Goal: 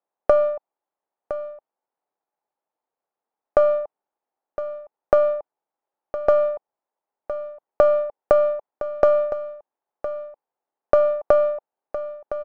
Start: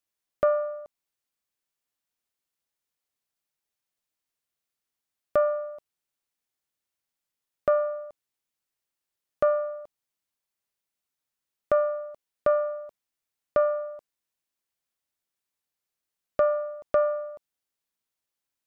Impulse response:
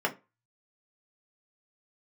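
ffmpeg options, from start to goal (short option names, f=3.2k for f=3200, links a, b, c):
-filter_complex "[0:a]highpass=580,asplit=2[a][b];[b]aeval=exprs='clip(val(0),-1,0.0178)':c=same,volume=-10dB[c];[a][c]amix=inputs=2:normalize=0,equalizer=f=840:t=o:w=0.35:g=8,acompressor=threshold=-25dB:ratio=3,atempo=1.5,adynamicsmooth=sensitivity=5:basefreq=1.2k,tiltshelf=f=1.1k:g=7.5,aecho=1:1:1012:0.237,volume=8.5dB"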